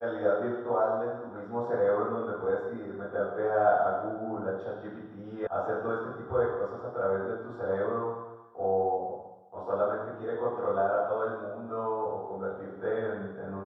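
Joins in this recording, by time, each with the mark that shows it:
5.47 s: sound stops dead

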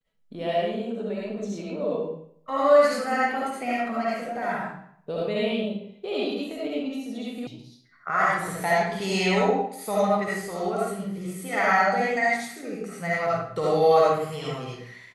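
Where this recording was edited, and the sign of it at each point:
7.47 s: sound stops dead

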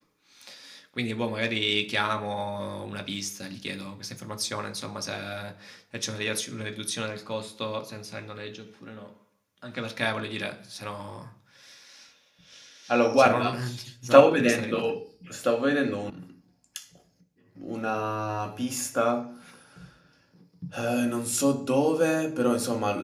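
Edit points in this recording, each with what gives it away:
16.10 s: sound stops dead

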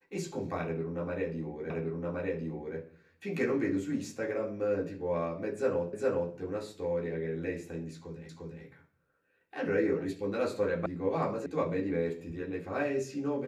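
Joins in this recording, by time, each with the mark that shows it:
1.70 s: repeat of the last 1.07 s
5.93 s: repeat of the last 0.41 s
8.29 s: repeat of the last 0.35 s
10.86 s: sound stops dead
11.46 s: sound stops dead

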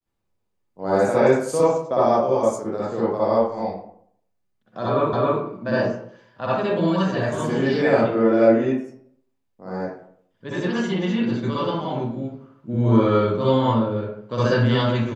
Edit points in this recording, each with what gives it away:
5.13 s: repeat of the last 0.27 s

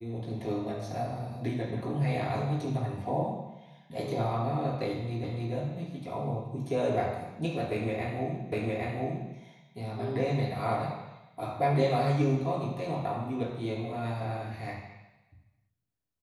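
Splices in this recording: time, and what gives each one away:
5.24 s: repeat of the last 0.29 s
8.52 s: repeat of the last 0.81 s

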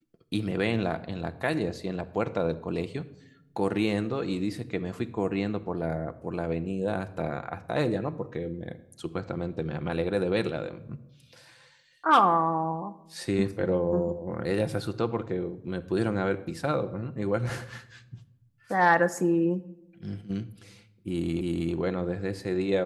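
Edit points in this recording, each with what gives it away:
21.41 s: repeat of the last 0.32 s

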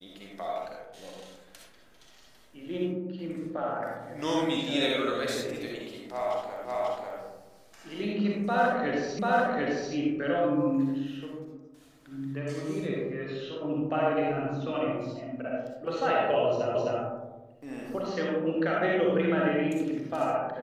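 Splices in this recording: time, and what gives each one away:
6.65 s: repeat of the last 0.54 s
9.19 s: repeat of the last 0.74 s
16.75 s: repeat of the last 0.26 s

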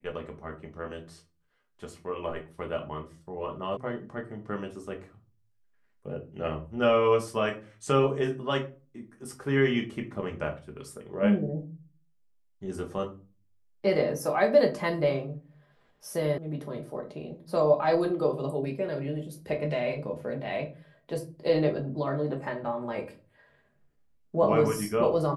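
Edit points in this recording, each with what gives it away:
3.77 s: sound stops dead
16.38 s: sound stops dead

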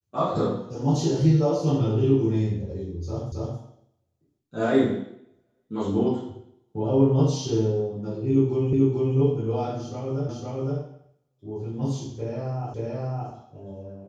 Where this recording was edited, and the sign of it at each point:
3.32 s: repeat of the last 0.27 s
8.73 s: repeat of the last 0.44 s
10.29 s: repeat of the last 0.51 s
12.74 s: repeat of the last 0.57 s

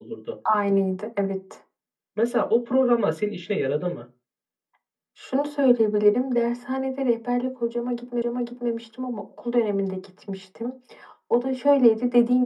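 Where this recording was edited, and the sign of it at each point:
8.22 s: repeat of the last 0.49 s

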